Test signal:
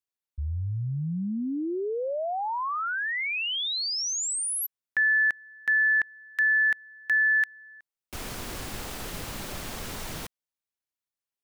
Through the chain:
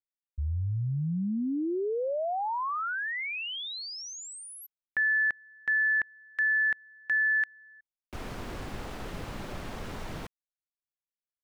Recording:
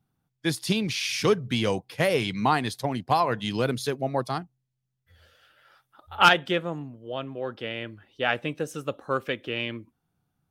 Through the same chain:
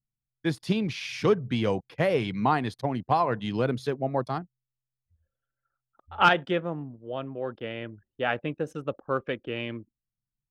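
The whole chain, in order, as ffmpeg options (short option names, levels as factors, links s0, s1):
-af "anlmdn=0.0631,lowpass=f=1600:p=1"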